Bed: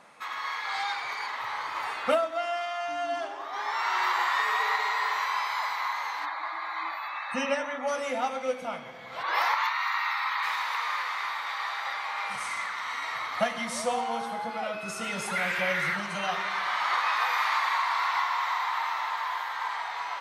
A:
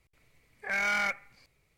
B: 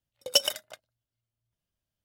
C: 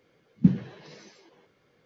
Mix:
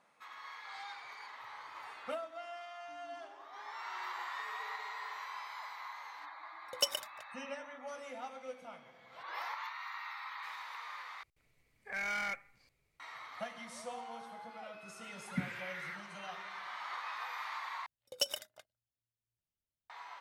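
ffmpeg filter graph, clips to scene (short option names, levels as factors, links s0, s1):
-filter_complex "[2:a]asplit=2[s0][s1];[0:a]volume=0.168,asplit=3[s2][s3][s4];[s2]atrim=end=11.234[s5];[1:a]atrim=end=1.77,asetpts=PTS-STARTPTS,volume=0.398[s6];[s3]atrim=start=12.996:end=17.864[s7];[s1]atrim=end=2.04,asetpts=PTS-STARTPTS,volume=0.282[s8];[s4]atrim=start=19.896[s9];[s0]atrim=end=2.04,asetpts=PTS-STARTPTS,volume=0.355,afade=t=in:d=0.004:c=hsin,afade=t=out:st=2.036:d=0.004:c=hsin,adelay=6470[s10];[3:a]atrim=end=1.85,asetpts=PTS-STARTPTS,volume=0.126,afade=t=in:d=0.004:c=hsin,afade=t=out:st=1.846:d=0.004:c=hsin,adelay=14930[s11];[s5][s6]acrossfade=d=0.004:c1=hsin:c2=hsin[s12];[s12][s7]acrossfade=d=0.004:c1=hsin:c2=hsin[s13];[s13][s8]acrossfade=d=0.004:c1=hsin:c2=hsin[s14];[s14][s9]acrossfade=d=0.004:c1=hsin:c2=hsin[s15];[s15][s10][s11]amix=inputs=3:normalize=0"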